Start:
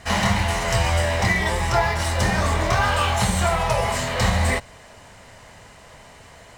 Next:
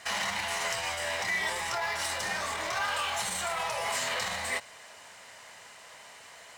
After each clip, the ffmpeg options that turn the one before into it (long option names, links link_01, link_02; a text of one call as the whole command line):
ffmpeg -i in.wav -af "alimiter=limit=-18dB:level=0:latency=1:release=38,highpass=frequency=1300:poles=1" out.wav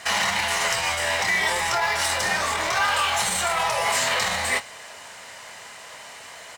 ffmpeg -i in.wav -filter_complex "[0:a]asplit=2[link_01][link_02];[link_02]adelay=23,volume=-12dB[link_03];[link_01][link_03]amix=inputs=2:normalize=0,volume=8.5dB" out.wav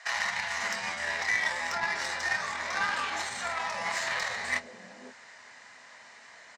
ffmpeg -i in.wav -filter_complex "[0:a]highpass=110,equalizer=frequency=240:width_type=q:width=4:gain=7,equalizer=frequency=1800:width_type=q:width=4:gain=6,equalizer=frequency=3000:width_type=q:width=4:gain=-6,lowpass=frequency=6800:width=0.5412,lowpass=frequency=6800:width=1.3066,acrossover=split=170|510[link_01][link_02][link_03];[link_01]adelay=80[link_04];[link_02]adelay=520[link_05];[link_04][link_05][link_03]amix=inputs=3:normalize=0,aeval=exprs='0.335*(cos(1*acos(clip(val(0)/0.335,-1,1)))-cos(1*PI/2))+0.0531*(cos(3*acos(clip(val(0)/0.335,-1,1)))-cos(3*PI/2))':channel_layout=same,volume=-5dB" out.wav